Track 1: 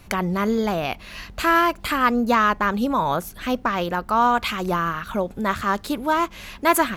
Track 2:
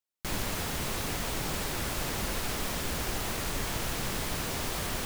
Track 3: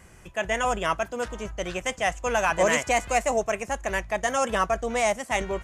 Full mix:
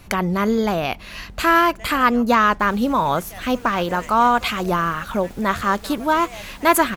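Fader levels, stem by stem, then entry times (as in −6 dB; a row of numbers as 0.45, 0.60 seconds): +2.5, −14.0, −15.5 decibels; 0.00, 2.35, 1.30 seconds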